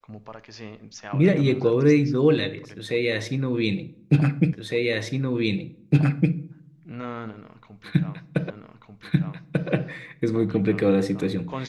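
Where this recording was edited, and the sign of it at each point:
4.53 repeat of the last 1.81 s
8.5 repeat of the last 1.19 s

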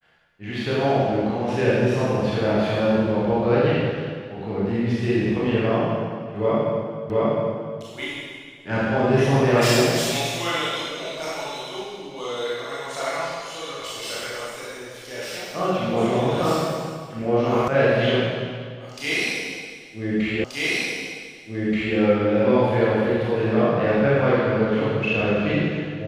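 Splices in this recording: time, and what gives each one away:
7.1 repeat of the last 0.71 s
17.68 sound cut off
20.44 repeat of the last 1.53 s

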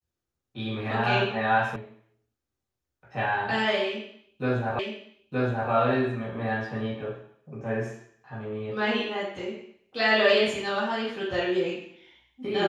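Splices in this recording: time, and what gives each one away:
1.76 sound cut off
4.79 repeat of the last 0.92 s

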